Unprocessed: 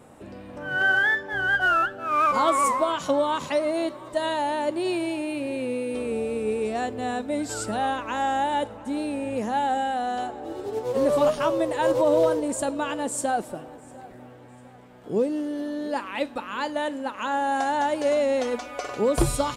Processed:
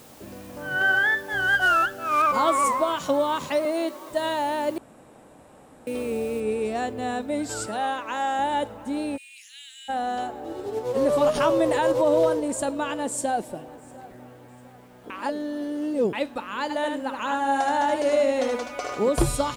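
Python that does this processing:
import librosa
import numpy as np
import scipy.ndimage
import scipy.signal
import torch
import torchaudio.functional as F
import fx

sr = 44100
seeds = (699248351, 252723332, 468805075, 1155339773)

y = fx.high_shelf(x, sr, hz=3900.0, db=10.5, at=(1.27, 2.22))
y = fx.highpass(y, sr, hz=210.0, slope=24, at=(3.65, 4.1))
y = fx.noise_floor_step(y, sr, seeds[0], at_s=6.4, before_db=-52, after_db=-68, tilt_db=0.0)
y = fx.highpass(y, sr, hz=370.0, slope=6, at=(7.66, 8.39))
y = fx.steep_highpass(y, sr, hz=2400.0, slope=36, at=(9.16, 9.88), fade=0.02)
y = fx.env_flatten(y, sr, amount_pct=50, at=(11.34, 11.79), fade=0.02)
y = fx.peak_eq(y, sr, hz=1300.0, db=-8.0, octaves=0.34, at=(13.14, 13.68))
y = fx.echo_single(y, sr, ms=76, db=-5.0, at=(16.69, 19.08), fade=0.02)
y = fx.edit(y, sr, fx.room_tone_fill(start_s=4.78, length_s=1.09),
    fx.reverse_span(start_s=15.1, length_s=1.03), tone=tone)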